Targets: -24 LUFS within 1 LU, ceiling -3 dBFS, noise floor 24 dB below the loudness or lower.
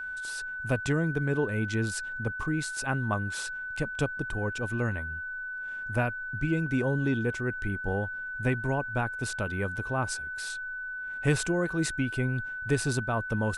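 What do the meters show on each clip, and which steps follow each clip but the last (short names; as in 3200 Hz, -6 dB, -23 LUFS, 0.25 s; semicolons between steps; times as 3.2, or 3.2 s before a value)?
steady tone 1500 Hz; tone level -34 dBFS; loudness -30.5 LUFS; peak -13.5 dBFS; loudness target -24.0 LUFS
-> notch 1500 Hz, Q 30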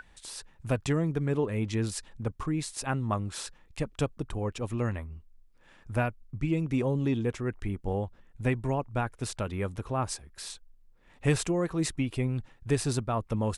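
steady tone none; loudness -31.5 LUFS; peak -13.5 dBFS; loudness target -24.0 LUFS
-> gain +7.5 dB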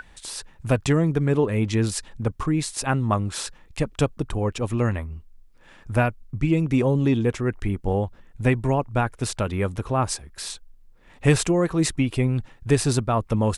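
loudness -24.0 LUFS; peak -6.0 dBFS; noise floor -52 dBFS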